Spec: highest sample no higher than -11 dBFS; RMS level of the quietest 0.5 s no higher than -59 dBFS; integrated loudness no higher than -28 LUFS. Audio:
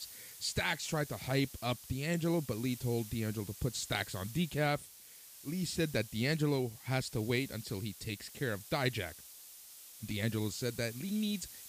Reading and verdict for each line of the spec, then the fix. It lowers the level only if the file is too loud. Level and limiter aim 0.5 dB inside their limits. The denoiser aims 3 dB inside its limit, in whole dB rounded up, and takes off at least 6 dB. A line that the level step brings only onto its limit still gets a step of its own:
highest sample -19.0 dBFS: OK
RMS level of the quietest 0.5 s -55 dBFS: fail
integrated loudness -35.5 LUFS: OK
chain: denoiser 7 dB, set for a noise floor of -55 dBFS

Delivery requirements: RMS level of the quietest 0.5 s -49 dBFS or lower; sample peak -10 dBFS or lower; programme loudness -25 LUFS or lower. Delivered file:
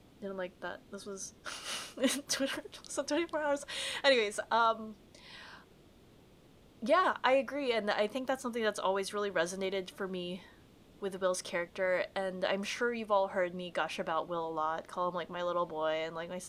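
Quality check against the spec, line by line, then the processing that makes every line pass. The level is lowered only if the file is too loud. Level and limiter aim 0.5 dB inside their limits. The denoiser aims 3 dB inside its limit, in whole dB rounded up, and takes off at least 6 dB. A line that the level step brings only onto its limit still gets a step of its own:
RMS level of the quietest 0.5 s -60 dBFS: OK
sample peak -13.0 dBFS: OK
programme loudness -34.0 LUFS: OK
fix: none

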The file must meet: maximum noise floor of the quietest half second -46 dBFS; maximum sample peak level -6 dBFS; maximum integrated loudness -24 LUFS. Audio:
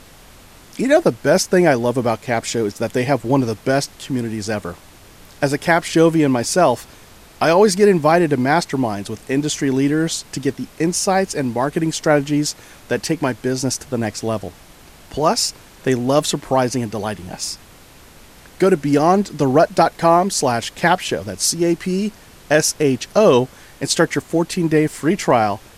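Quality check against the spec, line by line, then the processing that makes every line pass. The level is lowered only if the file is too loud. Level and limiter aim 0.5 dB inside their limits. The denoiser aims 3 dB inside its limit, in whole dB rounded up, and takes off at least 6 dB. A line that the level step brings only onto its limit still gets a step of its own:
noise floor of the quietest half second -44 dBFS: fail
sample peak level -2.0 dBFS: fail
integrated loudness -18.0 LUFS: fail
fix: gain -6.5 dB

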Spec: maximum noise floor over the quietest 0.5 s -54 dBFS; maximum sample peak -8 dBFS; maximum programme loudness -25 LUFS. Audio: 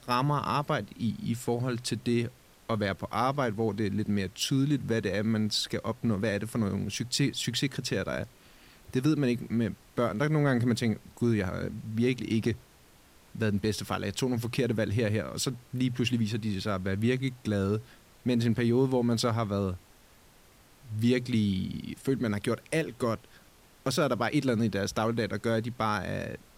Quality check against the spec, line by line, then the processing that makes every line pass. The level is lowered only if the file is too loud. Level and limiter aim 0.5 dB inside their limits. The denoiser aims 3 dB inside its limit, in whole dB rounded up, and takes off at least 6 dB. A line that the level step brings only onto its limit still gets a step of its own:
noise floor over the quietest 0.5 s -58 dBFS: OK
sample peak -14.5 dBFS: OK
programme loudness -29.5 LUFS: OK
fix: none

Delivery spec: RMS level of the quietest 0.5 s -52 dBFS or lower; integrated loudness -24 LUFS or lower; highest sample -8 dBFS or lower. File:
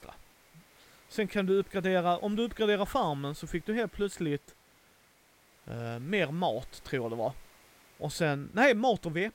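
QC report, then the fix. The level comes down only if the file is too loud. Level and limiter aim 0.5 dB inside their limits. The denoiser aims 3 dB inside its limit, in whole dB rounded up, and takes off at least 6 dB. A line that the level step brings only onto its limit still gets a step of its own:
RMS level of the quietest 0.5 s -63 dBFS: OK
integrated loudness -31.0 LUFS: OK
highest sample -11.0 dBFS: OK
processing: none

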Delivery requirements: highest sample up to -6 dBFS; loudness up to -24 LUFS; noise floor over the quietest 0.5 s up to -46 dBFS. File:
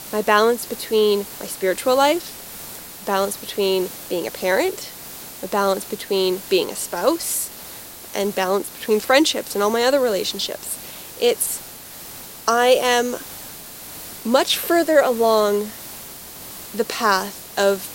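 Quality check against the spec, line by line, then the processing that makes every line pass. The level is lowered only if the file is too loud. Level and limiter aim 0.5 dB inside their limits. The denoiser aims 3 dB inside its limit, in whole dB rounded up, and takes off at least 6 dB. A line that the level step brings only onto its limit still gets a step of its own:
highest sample -1.0 dBFS: fail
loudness -20.0 LUFS: fail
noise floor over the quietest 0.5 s -38 dBFS: fail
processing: denoiser 7 dB, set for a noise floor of -38 dBFS; gain -4.5 dB; limiter -6.5 dBFS

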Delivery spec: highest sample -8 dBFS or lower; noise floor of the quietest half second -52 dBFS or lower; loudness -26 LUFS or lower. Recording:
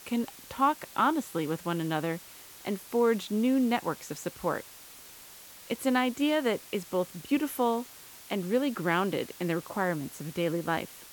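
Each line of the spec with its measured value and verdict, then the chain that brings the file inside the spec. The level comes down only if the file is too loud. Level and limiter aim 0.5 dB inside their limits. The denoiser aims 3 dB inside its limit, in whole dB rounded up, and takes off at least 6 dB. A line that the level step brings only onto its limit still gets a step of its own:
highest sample -13.0 dBFS: OK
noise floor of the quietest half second -50 dBFS: fail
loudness -30.0 LUFS: OK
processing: denoiser 6 dB, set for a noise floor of -50 dBFS

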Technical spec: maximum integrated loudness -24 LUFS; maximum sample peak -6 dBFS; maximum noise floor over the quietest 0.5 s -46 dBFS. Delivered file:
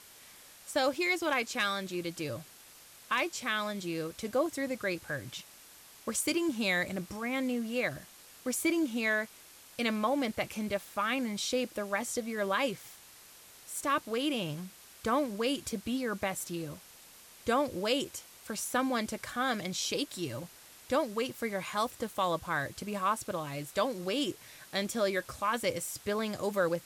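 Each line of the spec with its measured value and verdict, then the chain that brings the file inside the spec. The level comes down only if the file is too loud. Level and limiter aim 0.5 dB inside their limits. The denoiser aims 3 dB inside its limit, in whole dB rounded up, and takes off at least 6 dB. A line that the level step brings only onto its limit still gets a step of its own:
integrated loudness -33.0 LUFS: OK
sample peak -17.5 dBFS: OK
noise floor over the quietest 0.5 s -55 dBFS: OK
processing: none

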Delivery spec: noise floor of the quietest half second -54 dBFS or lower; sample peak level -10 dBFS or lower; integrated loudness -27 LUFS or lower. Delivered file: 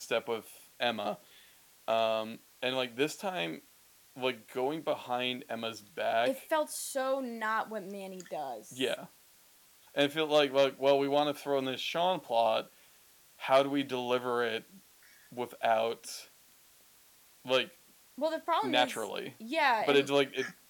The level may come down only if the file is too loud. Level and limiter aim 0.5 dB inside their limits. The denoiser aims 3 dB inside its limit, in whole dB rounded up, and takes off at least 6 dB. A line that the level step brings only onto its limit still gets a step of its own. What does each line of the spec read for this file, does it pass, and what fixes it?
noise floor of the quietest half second -62 dBFS: OK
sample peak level -13.5 dBFS: OK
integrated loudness -32.0 LUFS: OK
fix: none

